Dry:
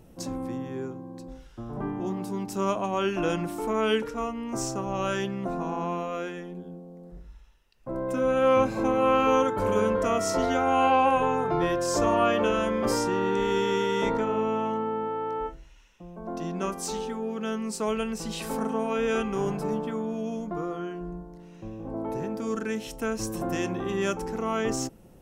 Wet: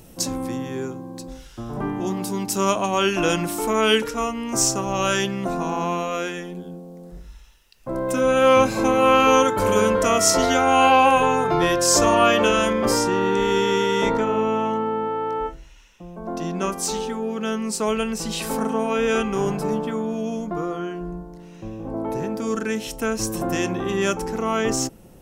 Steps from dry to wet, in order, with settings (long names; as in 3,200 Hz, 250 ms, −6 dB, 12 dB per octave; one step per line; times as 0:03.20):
high-shelf EQ 2,500 Hz +11.5 dB, from 0:12.73 +4 dB
level +5 dB